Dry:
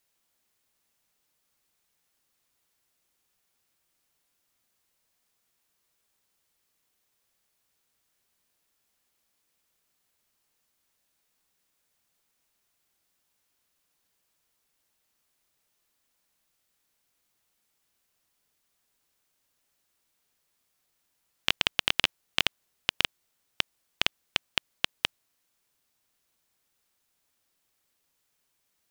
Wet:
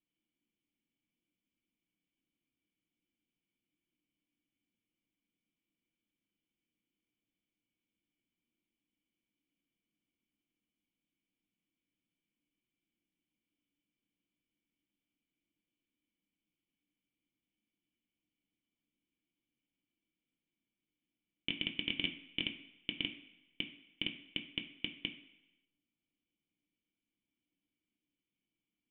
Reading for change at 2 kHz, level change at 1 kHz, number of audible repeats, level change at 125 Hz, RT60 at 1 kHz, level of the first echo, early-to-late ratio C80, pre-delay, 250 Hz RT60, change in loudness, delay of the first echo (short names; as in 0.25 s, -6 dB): -11.0 dB, -25.5 dB, none, -6.0 dB, 1.0 s, none, 13.0 dB, 5 ms, 0.90 s, -10.0 dB, none